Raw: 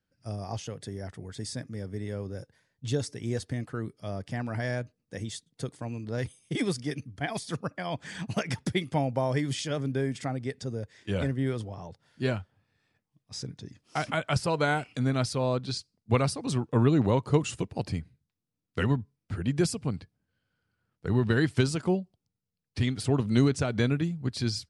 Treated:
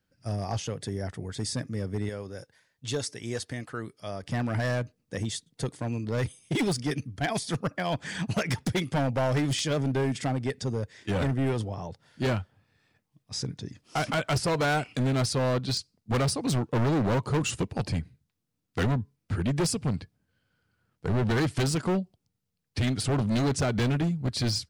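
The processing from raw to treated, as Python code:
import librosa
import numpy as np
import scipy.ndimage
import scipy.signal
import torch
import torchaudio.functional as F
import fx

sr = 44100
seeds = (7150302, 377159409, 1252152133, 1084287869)

y = fx.low_shelf(x, sr, hz=460.0, db=-10.5, at=(2.09, 4.23))
y = np.clip(10.0 ** (27.5 / 20.0) * y, -1.0, 1.0) / 10.0 ** (27.5 / 20.0)
y = y * 10.0 ** (5.0 / 20.0)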